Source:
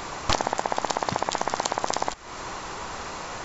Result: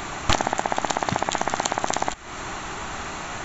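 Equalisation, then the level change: graphic EQ with 31 bands 500 Hz -11 dB, 1 kHz -6 dB, 5 kHz -11 dB; +5.0 dB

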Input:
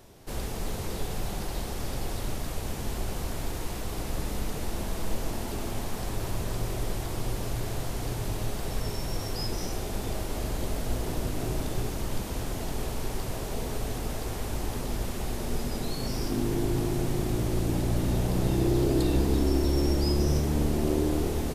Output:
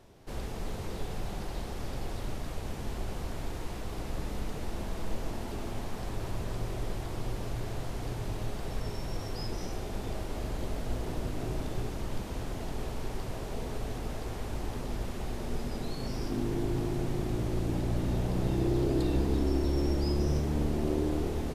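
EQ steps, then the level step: low-pass 4 kHz 6 dB/octave; -3.5 dB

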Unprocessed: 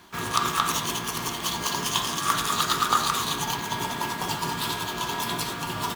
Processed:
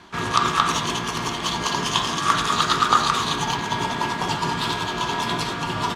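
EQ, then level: distance through air 77 m; +5.5 dB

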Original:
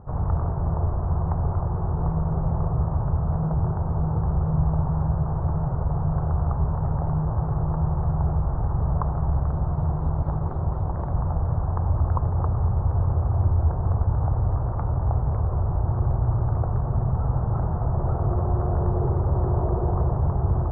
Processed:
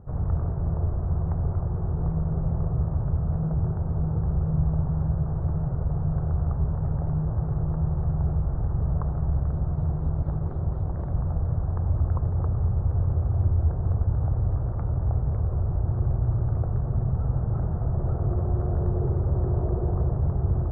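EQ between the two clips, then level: peaking EQ 960 Hz -10 dB 1 oct; -1.5 dB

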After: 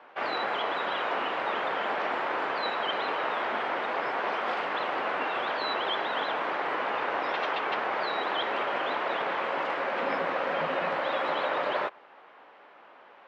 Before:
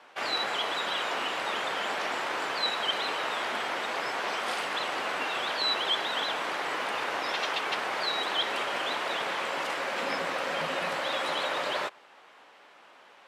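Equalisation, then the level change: tape spacing loss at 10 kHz 31 dB; bass shelf 230 Hz -8 dB; treble shelf 5.6 kHz -8.5 dB; +6.5 dB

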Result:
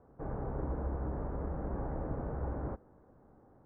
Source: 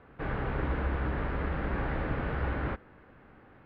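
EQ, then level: four-pole ladder low-pass 1.1 kHz, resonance 20%; 0.0 dB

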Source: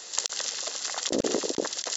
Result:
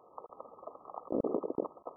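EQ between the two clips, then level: brick-wall FIR low-pass 1.3 kHz; -5.0 dB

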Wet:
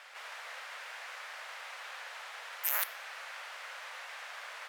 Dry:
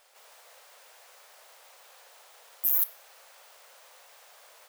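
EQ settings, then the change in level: band-pass filter 1.8 kHz, Q 1.3; +16.0 dB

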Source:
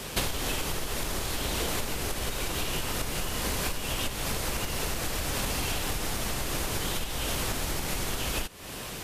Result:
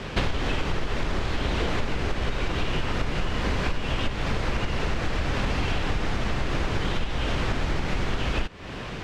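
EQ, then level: distance through air 150 m; bass shelf 490 Hz +7.5 dB; peaking EQ 1.8 kHz +5.5 dB 1.9 oct; 0.0 dB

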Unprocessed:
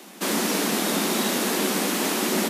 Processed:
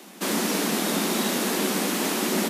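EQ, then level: bass shelf 88 Hz +10 dB; -1.5 dB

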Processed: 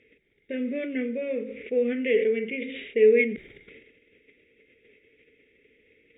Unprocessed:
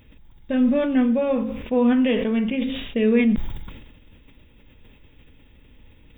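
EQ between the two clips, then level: dynamic bell 900 Hz, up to -6 dB, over -43 dBFS, Q 2.1; two resonant band-passes 960 Hz, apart 2.3 oct; +6.5 dB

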